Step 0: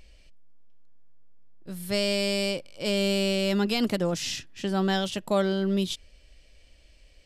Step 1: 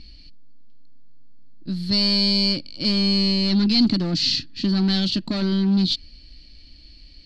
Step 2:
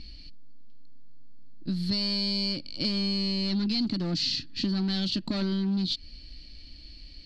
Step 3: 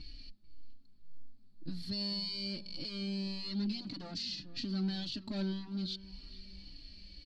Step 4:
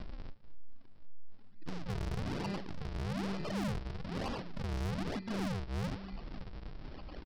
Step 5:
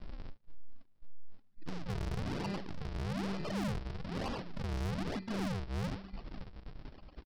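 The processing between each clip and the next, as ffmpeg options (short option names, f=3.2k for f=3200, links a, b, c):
-af "volume=26.5dB,asoftclip=hard,volume=-26.5dB,lowpass=f=4.4k:t=q:w=14,lowshelf=f=370:t=q:w=3:g=8.5"
-af "acompressor=threshold=-26dB:ratio=5"
-filter_complex "[0:a]alimiter=level_in=1.5dB:limit=-24dB:level=0:latency=1:release=259,volume=-1.5dB,asplit=2[a][b];[b]adelay=440,lowpass=f=3.3k:p=1,volume=-17.5dB,asplit=2[c][d];[d]adelay=440,lowpass=f=3.3k:p=1,volume=0.39,asplit=2[e][f];[f]adelay=440,lowpass=f=3.3k:p=1,volume=0.39[g];[a][c][e][g]amix=inputs=4:normalize=0,asplit=2[h][i];[i]adelay=3.6,afreqshift=-1.8[j];[h][j]amix=inputs=2:normalize=1,volume=-1.5dB"
-af "aresample=11025,acrusher=samples=24:mix=1:aa=0.000001:lfo=1:lforange=38.4:lforate=1.1,aresample=44100,asoftclip=type=tanh:threshold=-39.5dB,volume=6.5dB"
-af "agate=range=-15dB:threshold=-43dB:ratio=16:detection=peak"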